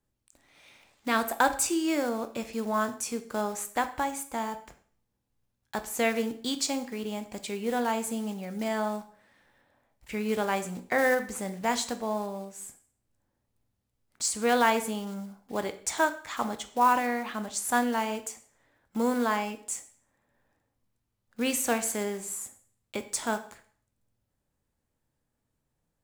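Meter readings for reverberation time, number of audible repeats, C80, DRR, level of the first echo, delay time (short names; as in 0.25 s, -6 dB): 0.50 s, none, 17.0 dB, 9.0 dB, none, none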